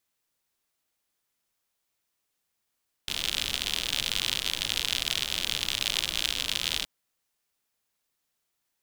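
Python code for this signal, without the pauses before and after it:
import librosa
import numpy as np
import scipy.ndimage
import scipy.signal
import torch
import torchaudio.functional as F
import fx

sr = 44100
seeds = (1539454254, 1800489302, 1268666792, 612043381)

y = fx.rain(sr, seeds[0], length_s=3.77, drops_per_s=79.0, hz=3300.0, bed_db=-11)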